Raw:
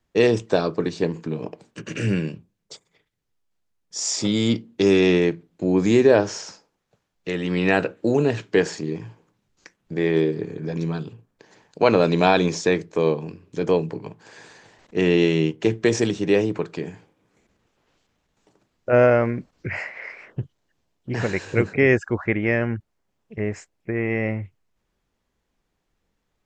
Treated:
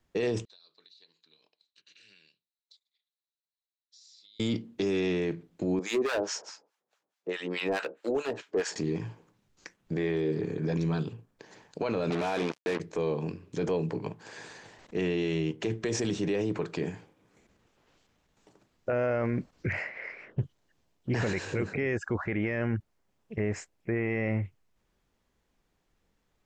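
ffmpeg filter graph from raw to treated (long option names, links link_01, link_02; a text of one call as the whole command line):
ffmpeg -i in.wav -filter_complex "[0:a]asettb=1/sr,asplit=3[link_01][link_02][link_03];[link_01]atrim=end=0.454[link_04];[link_02]atrim=start=0.45:end=4.4,asetpts=PTS-STARTPTS,afade=type=in:duration=0.004:curve=qsin,afade=type=out:start_time=3.946:duration=0.004:curve=qsin,bandpass=frequency=4000:width_type=q:width=13,acompressor=threshold=-53dB:ratio=12:attack=3.2:release=140:knee=1:detection=peak[link_05];[link_03]atrim=start=4.396[link_06];[link_04][link_05]acrossfade=duration=0.004:curve1=hsin:curve2=qsin[link_07];[link_07][link_06]acrossfade=duration=0.004:curve1=qsin:curve2=hsin,asettb=1/sr,asplit=3[link_08][link_09][link_10];[link_08]atrim=end=5.794[link_11];[link_09]atrim=start=5.79:end=8.76,asetpts=PTS-STARTPTS,afade=type=in:duration=0.004:curve=qsin,afade=type=out:start_time=2.966:duration=0.004:curve=qsin,highpass=380,asoftclip=type=hard:threshold=-17dB,acrossover=split=890[link_12][link_13];[link_12]aeval=exprs='val(0)*(1-1/2+1/2*cos(2*PI*4.7*n/s))':channel_layout=same[link_14];[link_13]aeval=exprs='val(0)*(1-1/2-1/2*cos(2*PI*4.7*n/s))':channel_layout=same[link_15];[link_14][link_15]amix=inputs=2:normalize=0[link_16];[link_10]atrim=start=8.756[link_17];[link_11][link_16]acrossfade=duration=0.004:curve1=hsin:curve2=qsin[link_18];[link_18][link_17]acrossfade=duration=0.004:curve1=qsin:curve2=hsin,asettb=1/sr,asplit=3[link_19][link_20][link_21];[link_19]atrim=end=12.104[link_22];[link_20]atrim=start=12.1:end=12.8,asetpts=PTS-STARTPTS,afade=type=in:duration=0.004:curve=qsin,afade=type=out:start_time=0.696:duration=0.004:curve=qsin,bass=frequency=250:gain=-4,treble=frequency=4000:gain=-13,acrusher=bits=3:mix=0:aa=0.5,highpass=150,lowpass=6500[link_23];[link_21]atrim=start=12.796[link_24];[link_22][link_23]acrossfade=duration=0.004:curve1=hsin:curve2=qsin[link_25];[link_25][link_24]acrossfade=duration=0.004:curve1=qsin:curve2=hsin,asettb=1/sr,asplit=3[link_26][link_27][link_28];[link_26]atrim=end=19.714[link_29];[link_27]atrim=start=19.71:end=20.4,asetpts=PTS-STARTPTS,afade=type=in:duration=0.004:curve=qsin,afade=type=out:start_time=0.686:duration=0.004:curve=qsin,asoftclip=type=hard:threshold=-22dB,lowpass=frequency=2300:poles=1,equalizer=frequency=960:width=0.95:gain=-6[link_30];[link_28]atrim=start=20.396[link_31];[link_29][link_30]acrossfade=duration=0.004:curve1=hsin:curve2=qsin[link_32];[link_32][link_31]acrossfade=duration=0.004:curve1=qsin:curve2=hsin,acompressor=threshold=-20dB:ratio=6,alimiter=limit=-21dB:level=0:latency=1:release=10" out.wav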